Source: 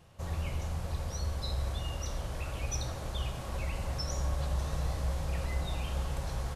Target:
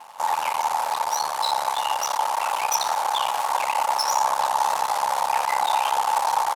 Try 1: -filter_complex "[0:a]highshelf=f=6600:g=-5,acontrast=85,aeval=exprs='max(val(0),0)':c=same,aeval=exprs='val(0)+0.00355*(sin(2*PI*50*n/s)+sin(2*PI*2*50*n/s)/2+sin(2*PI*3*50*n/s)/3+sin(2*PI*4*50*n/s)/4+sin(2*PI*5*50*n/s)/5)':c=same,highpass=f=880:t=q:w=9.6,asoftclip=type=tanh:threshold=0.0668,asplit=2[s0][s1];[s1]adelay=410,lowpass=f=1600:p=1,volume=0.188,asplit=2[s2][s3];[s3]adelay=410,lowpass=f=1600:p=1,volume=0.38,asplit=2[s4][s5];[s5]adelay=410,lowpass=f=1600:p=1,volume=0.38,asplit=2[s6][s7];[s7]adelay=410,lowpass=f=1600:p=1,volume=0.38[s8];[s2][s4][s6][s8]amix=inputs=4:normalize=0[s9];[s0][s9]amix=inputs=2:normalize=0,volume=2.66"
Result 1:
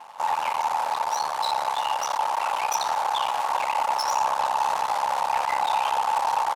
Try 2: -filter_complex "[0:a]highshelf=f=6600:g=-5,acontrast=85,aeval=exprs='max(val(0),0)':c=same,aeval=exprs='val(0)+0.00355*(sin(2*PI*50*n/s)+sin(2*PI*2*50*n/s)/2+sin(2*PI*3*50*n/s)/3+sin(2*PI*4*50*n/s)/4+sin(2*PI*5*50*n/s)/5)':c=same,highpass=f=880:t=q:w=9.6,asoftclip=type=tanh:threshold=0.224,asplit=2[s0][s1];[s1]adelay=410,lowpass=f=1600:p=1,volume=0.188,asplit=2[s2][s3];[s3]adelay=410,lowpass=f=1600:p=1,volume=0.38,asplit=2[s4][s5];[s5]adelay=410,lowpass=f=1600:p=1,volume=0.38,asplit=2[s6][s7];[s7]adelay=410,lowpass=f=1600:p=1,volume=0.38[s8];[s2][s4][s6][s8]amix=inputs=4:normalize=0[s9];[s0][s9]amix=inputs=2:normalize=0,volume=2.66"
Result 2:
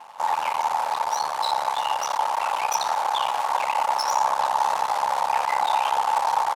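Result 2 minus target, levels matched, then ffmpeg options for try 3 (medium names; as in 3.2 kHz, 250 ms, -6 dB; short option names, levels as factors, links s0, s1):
8 kHz band -4.5 dB
-filter_complex "[0:a]highshelf=f=6600:g=6,acontrast=85,aeval=exprs='max(val(0),0)':c=same,aeval=exprs='val(0)+0.00355*(sin(2*PI*50*n/s)+sin(2*PI*2*50*n/s)/2+sin(2*PI*3*50*n/s)/3+sin(2*PI*4*50*n/s)/4+sin(2*PI*5*50*n/s)/5)':c=same,highpass=f=880:t=q:w=9.6,asoftclip=type=tanh:threshold=0.224,asplit=2[s0][s1];[s1]adelay=410,lowpass=f=1600:p=1,volume=0.188,asplit=2[s2][s3];[s3]adelay=410,lowpass=f=1600:p=1,volume=0.38,asplit=2[s4][s5];[s5]adelay=410,lowpass=f=1600:p=1,volume=0.38,asplit=2[s6][s7];[s7]adelay=410,lowpass=f=1600:p=1,volume=0.38[s8];[s2][s4][s6][s8]amix=inputs=4:normalize=0[s9];[s0][s9]amix=inputs=2:normalize=0,volume=2.66"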